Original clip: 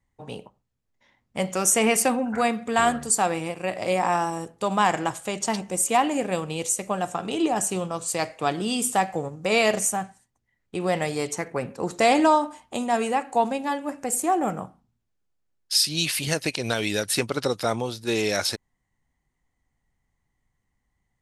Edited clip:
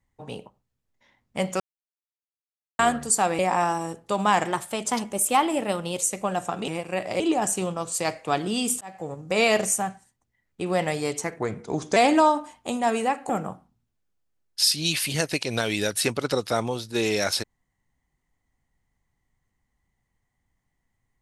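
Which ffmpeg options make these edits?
-filter_complex "[0:a]asplit=12[a][b][c][d][e][f][g][h][i][j][k][l];[a]atrim=end=1.6,asetpts=PTS-STARTPTS,afade=t=out:st=1.596:d=0.004:c=hsin[m];[b]atrim=start=1.6:end=2.79,asetpts=PTS-STARTPTS,volume=0[n];[c]atrim=start=2.79:end=3.392,asetpts=PTS-STARTPTS,afade=t=in:d=0.004:c=hsin[o];[d]atrim=start=3.908:end=4.974[p];[e]atrim=start=4.97:end=6.68,asetpts=PTS-STARTPTS,asetrate=48069,aresample=44100,atrim=end_sample=69184,asetpts=PTS-STARTPTS[q];[f]atrim=start=6.676:end=7.342[r];[g]atrim=start=3.388:end=3.912[s];[h]atrim=start=7.338:end=8.95,asetpts=PTS-STARTPTS,afade=t=out:st=1.608:d=0.004:c=hsin[t];[i]atrim=start=8.95:end=11.534,asetpts=PTS-STARTPTS,afade=t=in:d=0.44[u];[j]atrim=start=11.53:end=12.03,asetpts=PTS-STARTPTS,asetrate=38367,aresample=44100[v];[k]atrim=start=12.026:end=13.362[w];[l]atrim=start=14.418[x];[m][n][o]concat=n=3:v=0:a=1[y];[y][p]acrossfade=d=0.004:c1=hsin:c2=hsin[z];[z][q]acrossfade=d=0.004:c1=hsin:c2=hsin[aa];[aa][r]acrossfade=d=0.004:c1=hsin:c2=hsin[ab];[ab][s]acrossfade=d=0.004:c1=hsin:c2=hsin[ac];[t][u]concat=n=2:v=0:a=1[ad];[ac][ad]acrossfade=d=0.004:c1=hsin:c2=hsin[ae];[ae][v]acrossfade=d=0.004:c1=hsin:c2=hsin[af];[af][w]acrossfade=d=0.004:c1=hsin:c2=hsin[ag];[ag][x]acrossfade=d=0.004:c1=hsin:c2=hsin"

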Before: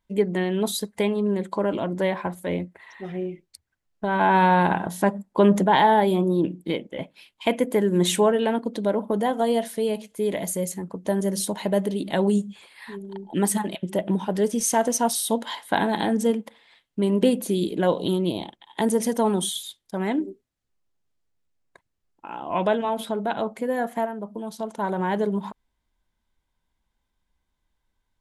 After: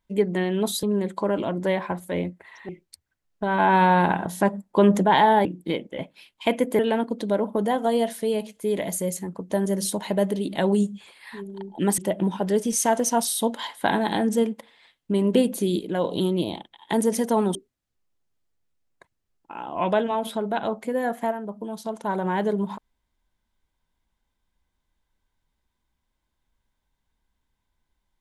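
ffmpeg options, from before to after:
-filter_complex "[0:a]asplit=9[a][b][c][d][e][f][g][h][i];[a]atrim=end=0.832[j];[b]atrim=start=1.178:end=3.042[k];[c]atrim=start=3.298:end=6.062[l];[d]atrim=start=6.448:end=7.792[m];[e]atrim=start=8.338:end=13.532[n];[f]atrim=start=13.858:end=17.672[o];[g]atrim=start=17.668:end=17.922,asetpts=PTS-STARTPTS,volume=-4dB[p];[h]atrim=start=17.918:end=19.432[q];[i]atrim=start=20.288[r];[j][k]acrossfade=d=0.004:c1=hsin:c2=hsin[s];[s][l]acrossfade=d=0.004:c1=hsin:c2=hsin[t];[t][m]acrossfade=d=0.004:c1=hsin:c2=hsin[u];[u][n]acrossfade=d=0.004:c1=hsin:c2=hsin[v];[v][o]acrossfade=d=0.004:c1=hsin:c2=hsin[w];[w][p]acrossfade=d=0.004:c1=hsin:c2=hsin[x];[x][q]acrossfade=d=0.004:c1=hsin:c2=hsin[y];[y][r]acrossfade=d=0.004:c1=hsin:c2=hsin"

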